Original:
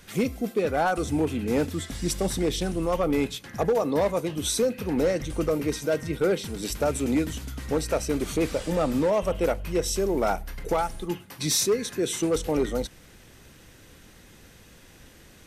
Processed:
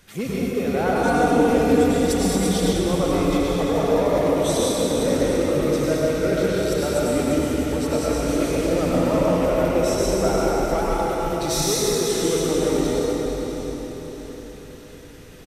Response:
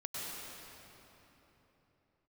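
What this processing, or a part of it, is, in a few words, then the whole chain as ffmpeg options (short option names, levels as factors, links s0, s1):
cave: -filter_complex "[0:a]aecho=1:1:341:0.398[s0];[1:a]atrim=start_sample=2205[s1];[s0][s1]afir=irnorm=-1:irlink=0,asettb=1/sr,asplit=3[s2][s3][s4];[s2]atrim=end=1.034[s5];[s3]atrim=start=1.03:end=2.73,asetpts=PTS-STARTPTS,afade=t=in:d=0.004:c=qsin,afade=t=out:st=1.696:d=0.004:c=qsin,aecho=1:1:4.2:0.83,atrim=end_sample=74970[s6];[s4]atrim=start=2.726[s7];[s5][s6]acrossfade=d=0.004:c1=hsin:c2=qsin[s8];[s8][s7]acrossfade=d=0.004:c1=qsin:c2=hsin,aecho=1:1:649|1298|1947|2596|3245:0.224|0.105|0.0495|0.0232|0.0109,volume=1.26"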